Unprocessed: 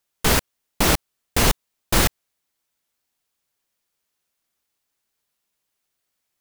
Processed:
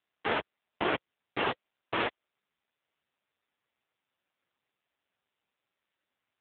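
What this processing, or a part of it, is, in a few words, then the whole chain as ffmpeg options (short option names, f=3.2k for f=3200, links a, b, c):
telephone: -filter_complex "[0:a]asplit=3[a][b][c];[a]afade=t=out:st=0.94:d=0.02[d];[b]bandreject=f=510:w=12,afade=t=in:st=0.94:d=0.02,afade=t=out:st=2:d=0.02[e];[c]afade=t=in:st=2:d=0.02[f];[d][e][f]amix=inputs=3:normalize=0,highpass=310,lowpass=3.1k,asoftclip=type=tanh:threshold=-16.5dB" -ar 8000 -c:a libopencore_amrnb -b:a 5900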